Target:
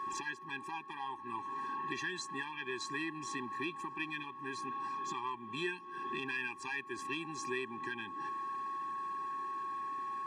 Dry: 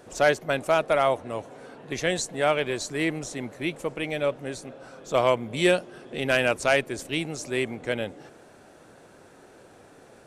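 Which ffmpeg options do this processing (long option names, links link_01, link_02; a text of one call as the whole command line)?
ffmpeg -i in.wav -af "aeval=exprs='val(0)+0.00631*sin(2*PI*1100*n/s)':channel_layout=same,acompressor=threshold=-34dB:ratio=6,asoftclip=type=tanh:threshold=-26dB,bandpass=frequency=1400:width_type=q:width=0.64:csg=0,afftfilt=real='re*eq(mod(floor(b*sr/1024/390),2),0)':imag='im*eq(mod(floor(b*sr/1024/390),2),0)':win_size=1024:overlap=0.75,volume=7.5dB" out.wav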